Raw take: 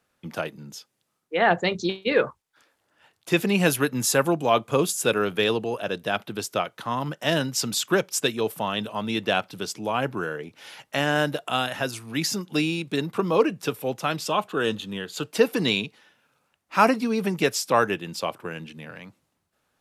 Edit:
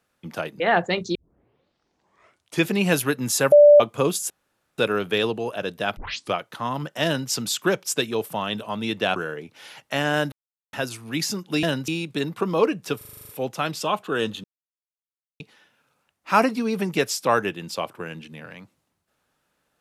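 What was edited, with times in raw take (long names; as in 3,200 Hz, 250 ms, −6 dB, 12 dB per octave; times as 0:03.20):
0:00.60–0:01.34: remove
0:01.89: tape start 1.52 s
0:04.26–0:04.54: beep over 587 Hz −7 dBFS
0:05.04: splice in room tone 0.48 s
0:06.23: tape start 0.36 s
0:07.31–0:07.56: duplicate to 0:12.65
0:09.42–0:10.18: remove
0:11.34–0:11.75: silence
0:13.74: stutter 0.04 s, 9 plays
0:14.89–0:15.85: silence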